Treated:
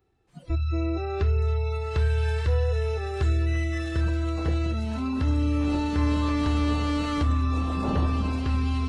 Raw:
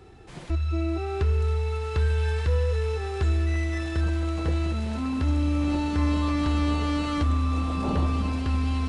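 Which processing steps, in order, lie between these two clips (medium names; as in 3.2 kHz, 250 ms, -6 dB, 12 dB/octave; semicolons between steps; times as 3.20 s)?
harmony voices +7 st -17 dB; spectral noise reduction 21 dB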